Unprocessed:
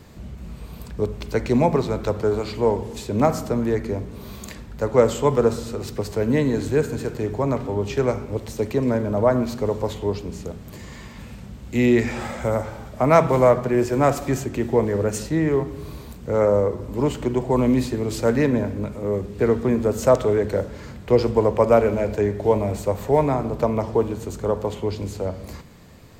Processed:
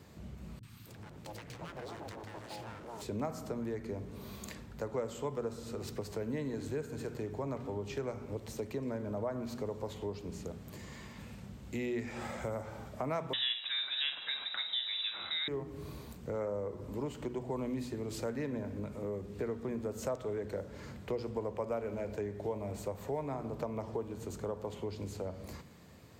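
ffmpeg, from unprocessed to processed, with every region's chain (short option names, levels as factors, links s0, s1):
-filter_complex "[0:a]asettb=1/sr,asplit=3[s0][s1][s2];[s0]atrim=end=0.594[s3];[s1]atrim=start=0.59:end=3.02,asetpts=PTS-STARTPTS,afade=t=in:d=0.004:c=qsin,afade=t=out:st=2.426:d=0.004:c=qsin,acompressor=threshold=0.0316:ratio=2.5:attack=3.2:release=140:knee=1:detection=peak,aeval=exprs='abs(val(0))':c=same,acrossover=split=250|1100[s4][s5][s6];[s6]adelay=40[s7];[s5]adelay=270[s8];[s4][s8][s7]amix=inputs=3:normalize=0,atrim=end_sample=107163[s9];[s2]atrim=start=3.016[s10];[s3][s9]acrossfade=d=0.004:c1=hsin:c2=qsin[s11];[s11][s10]acrossfade=d=0.004:c1=qsin:c2=hsin,asettb=1/sr,asplit=3[s12][s13][s14];[s12]atrim=end=13.334[s15];[s13]atrim=start=13.33:end=15.48,asetpts=PTS-STARTPTS,afade=t=in:d=0.004:c=qsin,afade=t=out:st=2.146:d=0.004:c=qsin,equalizer=f=3100:t=o:w=2.2:g=14.5,asplit=2[s16][s17];[s17]adelay=47,volume=0.282[s18];[s16][s18]amix=inputs=2:normalize=0,atrim=end_sample=94815,lowpass=f=3400:t=q:w=0.5098,lowpass=f=3400:t=q:w=0.6013,lowpass=f=3400:t=q:w=0.9,lowpass=f=3400:t=q:w=2.563,afreqshift=-4000[s19];[s14]atrim=start=15.476[s20];[s15][s19]acrossfade=d=0.004:c1=hsin:c2=qsin[s21];[s21][s20]acrossfade=d=0.004:c1=qsin:c2=hsin,highpass=69,bandreject=f=121.7:t=h:w=4,bandreject=f=243.4:t=h:w=4,acompressor=threshold=0.0398:ratio=3,volume=0.376"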